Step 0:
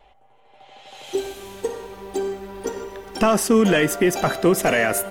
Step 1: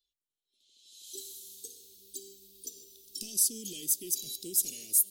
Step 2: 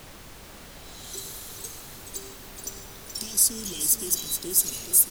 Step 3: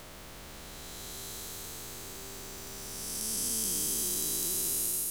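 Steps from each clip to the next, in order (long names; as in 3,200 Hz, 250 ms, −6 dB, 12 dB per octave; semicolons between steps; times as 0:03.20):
noise reduction from a noise print of the clip's start 12 dB; elliptic band-stop filter 350–3,900 Hz, stop band 60 dB; first-order pre-emphasis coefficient 0.97
background noise pink −51 dBFS; on a send: multi-tap delay 427/613 ms −8.5/−17 dB; on the sum: level +6 dB
spectrum smeared in time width 617 ms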